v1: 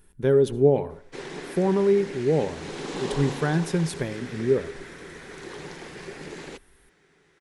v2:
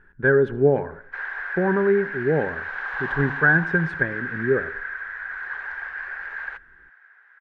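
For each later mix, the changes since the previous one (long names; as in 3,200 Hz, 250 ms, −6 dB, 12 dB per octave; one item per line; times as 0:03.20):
background: add high-pass filter 740 Hz 24 dB per octave
master: add low-pass with resonance 1,600 Hz, resonance Q 12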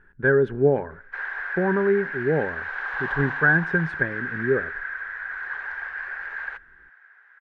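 speech: send −9.5 dB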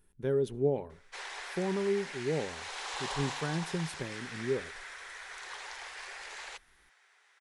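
speech −9.0 dB
master: remove low-pass with resonance 1,600 Hz, resonance Q 12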